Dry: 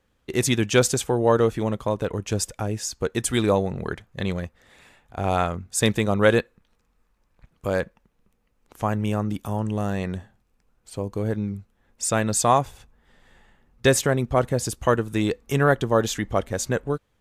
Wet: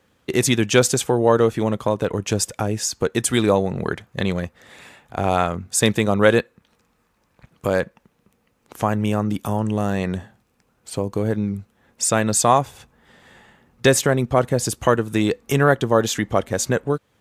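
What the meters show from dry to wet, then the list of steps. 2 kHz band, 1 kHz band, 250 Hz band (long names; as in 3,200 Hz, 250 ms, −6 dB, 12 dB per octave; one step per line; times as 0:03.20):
+3.5 dB, +3.5 dB, +3.5 dB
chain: high-pass filter 97 Hz
in parallel at +3 dB: downward compressor, threshold −31 dBFS, peak gain reduction 17.5 dB
on the sum: level +1 dB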